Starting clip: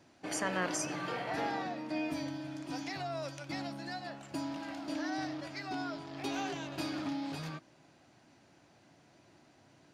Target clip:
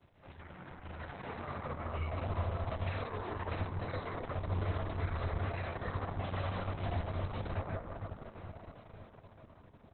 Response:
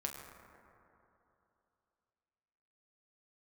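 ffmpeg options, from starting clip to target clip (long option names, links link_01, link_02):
-filter_complex "[0:a]aeval=exprs='val(0)*sin(2*PI*300*n/s)':channel_layout=same[link_01];[1:a]atrim=start_sample=2205[link_02];[link_01][link_02]afir=irnorm=-1:irlink=0,afreqshift=72,acompressor=threshold=-43dB:ratio=6,alimiter=level_in=17dB:limit=-24dB:level=0:latency=1:release=64,volume=-17dB,equalizer=frequency=90:width_type=o:width=1.9:gain=9,dynaudnorm=framelen=240:gausssize=11:maxgain=10dB,asetnsamples=nb_out_samples=441:pad=0,asendcmd='1.09 highshelf g 12.5',highshelf=frequency=5500:width_type=q:width=1.5:gain=6,asplit=2[link_03][link_04];[link_04]adelay=812,lowpass=frequency=1800:poles=1,volume=-13.5dB,asplit=2[link_05][link_06];[link_06]adelay=812,lowpass=frequency=1800:poles=1,volume=0.54,asplit=2[link_07][link_08];[link_08]adelay=812,lowpass=frequency=1800:poles=1,volume=0.54,asplit=2[link_09][link_10];[link_10]adelay=812,lowpass=frequency=1800:poles=1,volume=0.54,asplit=2[link_11][link_12];[link_12]adelay=812,lowpass=frequency=1800:poles=1,volume=0.54[link_13];[link_03][link_05][link_07][link_09][link_11][link_13]amix=inputs=6:normalize=0" -ar 48000 -c:a libopus -b:a 6k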